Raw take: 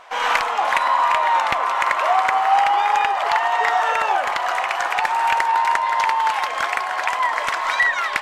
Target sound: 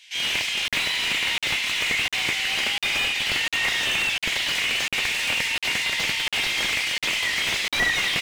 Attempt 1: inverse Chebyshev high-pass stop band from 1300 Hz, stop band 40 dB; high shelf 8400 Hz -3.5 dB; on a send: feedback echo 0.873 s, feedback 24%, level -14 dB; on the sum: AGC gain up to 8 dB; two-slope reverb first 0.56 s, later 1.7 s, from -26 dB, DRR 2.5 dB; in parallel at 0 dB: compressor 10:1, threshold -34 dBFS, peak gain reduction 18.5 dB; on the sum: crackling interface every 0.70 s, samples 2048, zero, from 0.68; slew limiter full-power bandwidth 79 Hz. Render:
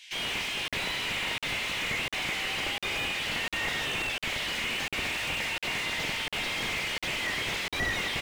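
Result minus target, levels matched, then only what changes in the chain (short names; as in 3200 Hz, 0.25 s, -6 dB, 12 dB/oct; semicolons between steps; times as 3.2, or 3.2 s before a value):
compressor: peak gain reduction +8.5 dB; slew limiter: distortion +7 dB
change: compressor 10:1, threshold -24.5 dBFS, peak gain reduction 10 dB; change: slew limiter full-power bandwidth 238.5 Hz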